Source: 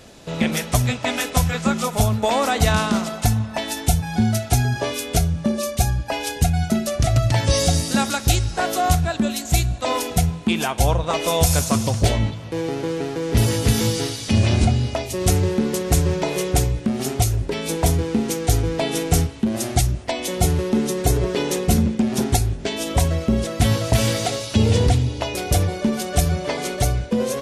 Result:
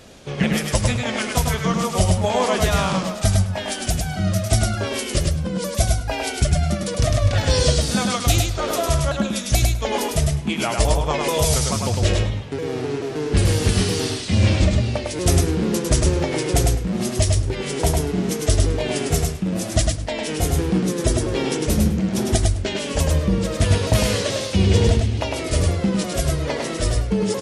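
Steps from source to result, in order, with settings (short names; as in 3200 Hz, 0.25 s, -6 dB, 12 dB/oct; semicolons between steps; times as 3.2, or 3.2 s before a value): repeated pitch sweeps -3.5 st, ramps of 0.434 s; feedback echo 0.103 s, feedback 15%, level -3.5 dB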